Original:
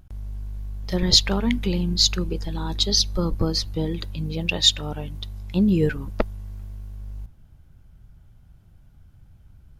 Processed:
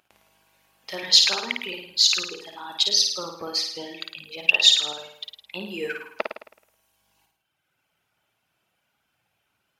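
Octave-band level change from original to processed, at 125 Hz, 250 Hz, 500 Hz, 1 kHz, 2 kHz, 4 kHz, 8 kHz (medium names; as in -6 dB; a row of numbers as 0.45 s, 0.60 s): under -25 dB, -17.0 dB, -6.0 dB, 0.0 dB, +7.0 dB, +2.5 dB, +1.0 dB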